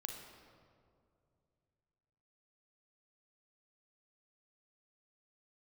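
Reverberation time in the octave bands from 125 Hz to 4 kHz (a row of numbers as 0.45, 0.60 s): 3.4, 2.9, 2.7, 2.2, 1.5, 1.2 s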